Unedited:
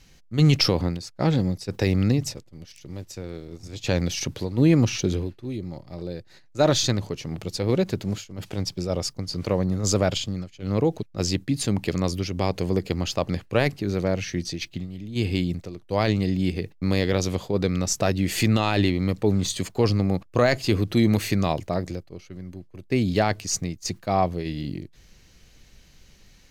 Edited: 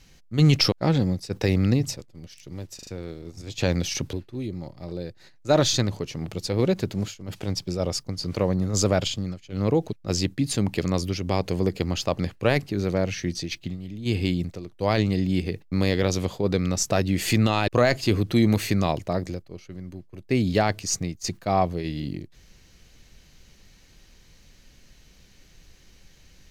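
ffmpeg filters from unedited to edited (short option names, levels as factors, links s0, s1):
-filter_complex "[0:a]asplit=7[s0][s1][s2][s3][s4][s5][s6];[s0]atrim=end=0.722[s7];[s1]atrim=start=1.098:end=3.172[s8];[s2]atrim=start=3.128:end=3.172[s9];[s3]atrim=start=3.128:end=3.172[s10];[s4]atrim=start=3.128:end=4.392[s11];[s5]atrim=start=5.228:end=18.782[s12];[s6]atrim=start=20.288[s13];[s7][s8]acrossfade=d=0.004:c1=hsin:c2=hsin[s14];[s14][s9]acrossfade=d=0.004:c1=hsin:c2=hsin[s15];[s15][s10]acrossfade=d=0.004:c1=hsin:c2=hsin[s16];[s16][s11]acrossfade=d=0.004:c1=hsin:c2=hsin[s17];[s17][s12]acrossfade=d=0.004:c1=hsin:c2=hsin[s18];[s18][s13]acrossfade=d=0.004:c1=hsin:c2=hsin"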